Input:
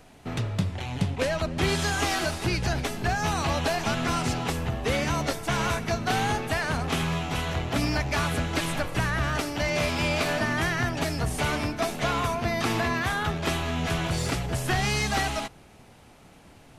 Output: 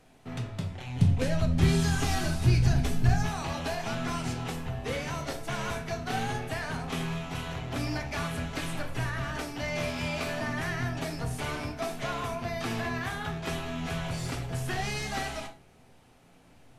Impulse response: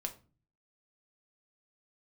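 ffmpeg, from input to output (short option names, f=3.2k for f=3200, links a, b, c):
-filter_complex "[0:a]asettb=1/sr,asplit=3[a][b][c];[a]atrim=end=0.984[d];[b]atrim=start=0.98:end=3.23,asetpts=PTS-STARTPTS,afade=t=in:d=0.004:c=qsin,afade=t=out:st=2.246:d=0.004:c=qsin,bass=f=250:g=13,treble=f=4k:g=4[e];[c]atrim=start=3.226[f];[d][e]acrossfade=d=0.004:c1=hsin:c2=qsin[g];[g][f]acrossfade=d=0.004:c1=qsin:c2=hsin[h];[1:a]atrim=start_sample=2205,atrim=end_sample=3969,asetrate=32193,aresample=44100[i];[h][i]afir=irnorm=-1:irlink=0,volume=-8dB"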